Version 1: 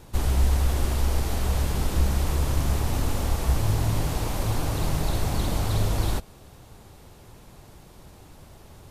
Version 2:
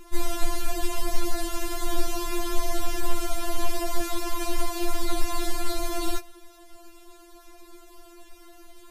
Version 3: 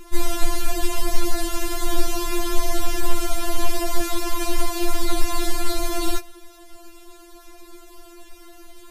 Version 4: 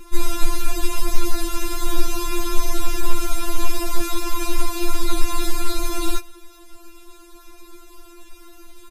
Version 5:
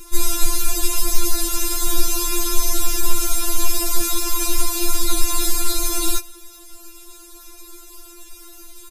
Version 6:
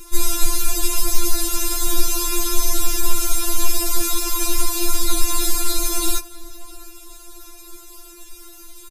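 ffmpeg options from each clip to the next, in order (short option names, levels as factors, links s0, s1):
-af "afftfilt=real='re*4*eq(mod(b,16),0)':imag='im*4*eq(mod(b,16),0)':win_size=2048:overlap=0.75,volume=1.5"
-af "equalizer=f=780:t=o:w=1.4:g=-2,volume=1.78"
-af "aecho=1:1:3.7:0.49,volume=0.891"
-af "bass=f=250:g=0,treble=f=4000:g=12,volume=0.891"
-filter_complex "[0:a]asplit=2[s0][s1];[s1]adelay=656,lowpass=f=2000:p=1,volume=0.133,asplit=2[s2][s3];[s3]adelay=656,lowpass=f=2000:p=1,volume=0.52,asplit=2[s4][s5];[s5]adelay=656,lowpass=f=2000:p=1,volume=0.52,asplit=2[s6][s7];[s7]adelay=656,lowpass=f=2000:p=1,volume=0.52[s8];[s0][s2][s4][s6][s8]amix=inputs=5:normalize=0"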